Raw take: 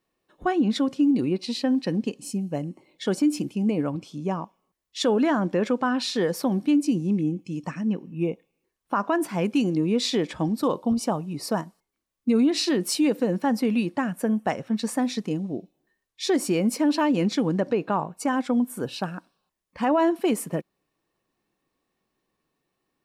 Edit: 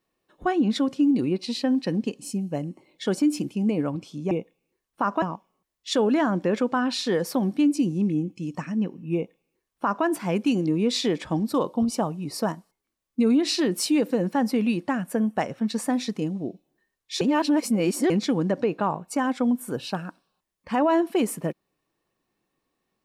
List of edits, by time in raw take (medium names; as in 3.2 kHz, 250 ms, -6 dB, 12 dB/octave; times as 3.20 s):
8.23–9.14 s: copy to 4.31 s
16.30–17.19 s: reverse